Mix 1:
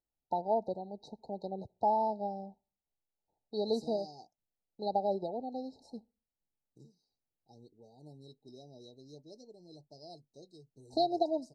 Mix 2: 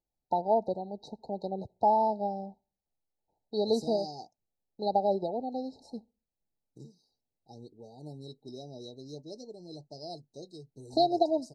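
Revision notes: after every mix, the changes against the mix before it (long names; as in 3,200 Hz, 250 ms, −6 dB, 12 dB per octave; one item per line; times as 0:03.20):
first voice +4.5 dB
second voice +8.5 dB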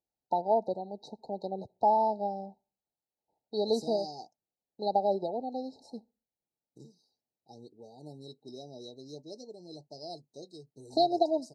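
master: add high-pass filter 200 Hz 6 dB per octave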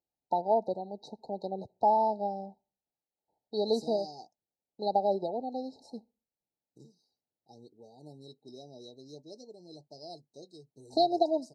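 second voice −3.0 dB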